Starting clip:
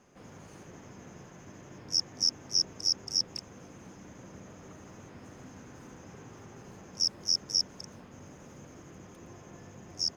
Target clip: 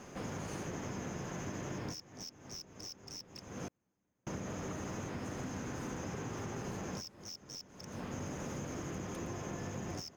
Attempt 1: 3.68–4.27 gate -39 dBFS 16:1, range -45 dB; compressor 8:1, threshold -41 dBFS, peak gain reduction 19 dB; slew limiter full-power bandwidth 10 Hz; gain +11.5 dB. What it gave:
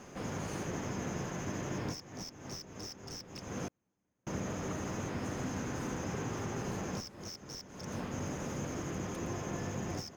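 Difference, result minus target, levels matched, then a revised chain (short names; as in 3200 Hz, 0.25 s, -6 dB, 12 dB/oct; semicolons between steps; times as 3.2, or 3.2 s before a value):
compressor: peak gain reduction -6.5 dB
3.68–4.27 gate -39 dBFS 16:1, range -45 dB; compressor 8:1, threshold -48.5 dBFS, peak gain reduction 25.5 dB; slew limiter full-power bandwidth 10 Hz; gain +11.5 dB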